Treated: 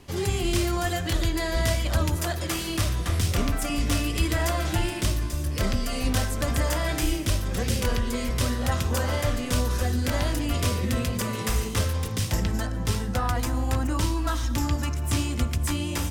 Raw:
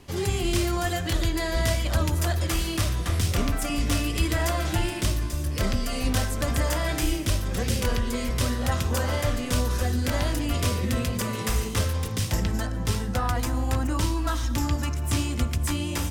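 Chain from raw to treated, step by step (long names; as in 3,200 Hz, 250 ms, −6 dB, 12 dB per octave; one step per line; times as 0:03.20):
0:02.16–0:02.70: high-pass filter 110 Hz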